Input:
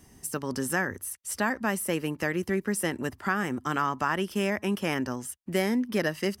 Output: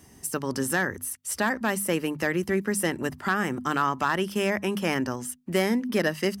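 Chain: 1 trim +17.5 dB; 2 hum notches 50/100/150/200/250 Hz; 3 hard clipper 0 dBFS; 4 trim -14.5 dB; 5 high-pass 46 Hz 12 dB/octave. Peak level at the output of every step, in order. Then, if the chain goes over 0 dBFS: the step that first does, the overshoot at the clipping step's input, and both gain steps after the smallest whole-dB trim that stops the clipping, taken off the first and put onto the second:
+5.0 dBFS, +5.5 dBFS, 0.0 dBFS, -14.5 dBFS, -13.5 dBFS; step 1, 5.5 dB; step 1 +11.5 dB, step 4 -8.5 dB

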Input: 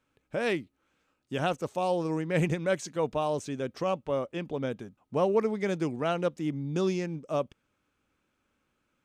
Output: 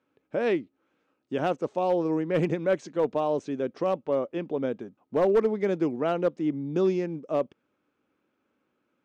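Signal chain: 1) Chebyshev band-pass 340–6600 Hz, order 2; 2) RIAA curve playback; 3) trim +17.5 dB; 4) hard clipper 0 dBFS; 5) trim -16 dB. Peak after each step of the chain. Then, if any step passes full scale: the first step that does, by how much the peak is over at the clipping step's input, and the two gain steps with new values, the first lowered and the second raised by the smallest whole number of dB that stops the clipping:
-14.0 dBFS, -11.5 dBFS, +6.0 dBFS, 0.0 dBFS, -16.0 dBFS; step 3, 6.0 dB; step 3 +11.5 dB, step 5 -10 dB

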